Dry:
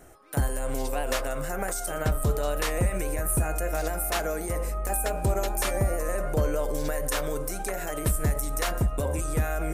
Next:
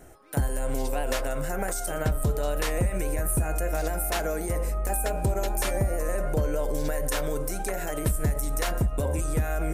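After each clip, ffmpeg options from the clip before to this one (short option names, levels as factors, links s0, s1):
-af "lowshelf=f=420:g=3,bandreject=f=1200:w=14,acompressor=threshold=0.0794:ratio=2.5"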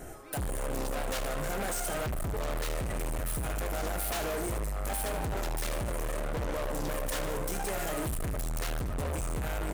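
-af "asoftclip=type=tanh:threshold=0.0282,aecho=1:1:75|150|225|300|375:0.447|0.197|0.0865|0.0381|0.0167,asoftclip=type=hard:threshold=0.0141,volume=2"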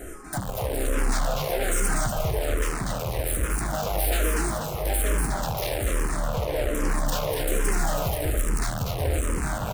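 -filter_complex "[0:a]aecho=1:1:243|486|729|972|1215:0.631|0.271|0.117|0.0502|0.0216,asplit=2[s0][s1];[s1]afreqshift=-1.2[s2];[s0][s2]amix=inputs=2:normalize=1,volume=2.51"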